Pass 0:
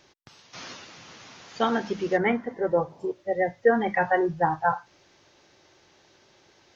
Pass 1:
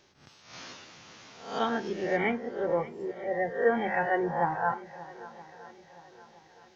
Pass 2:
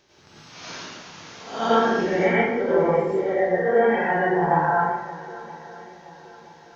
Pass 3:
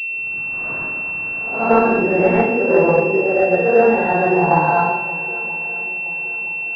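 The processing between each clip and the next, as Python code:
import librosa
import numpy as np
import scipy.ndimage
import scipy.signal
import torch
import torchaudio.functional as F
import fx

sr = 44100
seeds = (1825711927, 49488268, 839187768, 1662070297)

y1 = fx.spec_swells(x, sr, rise_s=0.53)
y1 = fx.echo_swing(y1, sr, ms=969, ratio=1.5, feedback_pct=38, wet_db=-18.0)
y1 = y1 * librosa.db_to_amplitude(-6.0)
y2 = fx.rider(y1, sr, range_db=4, speed_s=0.5)
y2 = fx.rev_plate(y2, sr, seeds[0], rt60_s=0.89, hf_ratio=0.7, predelay_ms=80, drr_db=-8.0)
y3 = fx.pwm(y2, sr, carrier_hz=2700.0)
y3 = y3 * librosa.db_to_amplitude(6.0)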